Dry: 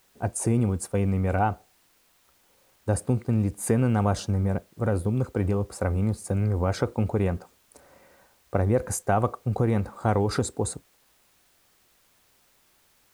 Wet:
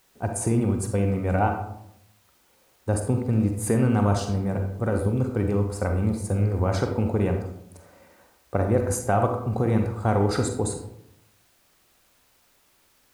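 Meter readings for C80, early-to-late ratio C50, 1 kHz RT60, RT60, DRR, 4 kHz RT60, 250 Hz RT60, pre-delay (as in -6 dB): 9.0 dB, 5.5 dB, 0.70 s, 0.75 s, 4.0 dB, 0.45 s, 0.95 s, 39 ms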